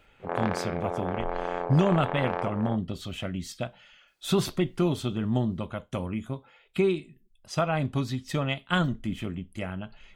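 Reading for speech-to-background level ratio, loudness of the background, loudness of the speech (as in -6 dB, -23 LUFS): 3.5 dB, -33.0 LUFS, -29.5 LUFS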